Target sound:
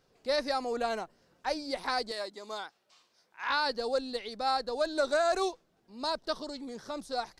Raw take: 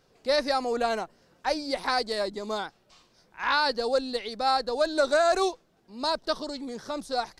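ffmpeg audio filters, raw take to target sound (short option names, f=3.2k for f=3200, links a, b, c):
-filter_complex "[0:a]asettb=1/sr,asplit=3[a][b][c];[a]atrim=end=2.114[d];[b]atrim=start=2.11:end=3.5,asetpts=PTS-STARTPTS,afade=t=in:d=0.004:c=qsin,afade=t=out:st=1.386:d=0.004:c=qsin,highpass=f=690:p=1[e];[c]atrim=start=3.496[f];[d][e]acrossfade=d=0.004:c1=hsin:c2=qsin[g];[g][f]acrossfade=d=0.004:c1=qsin:c2=hsin,volume=-5dB"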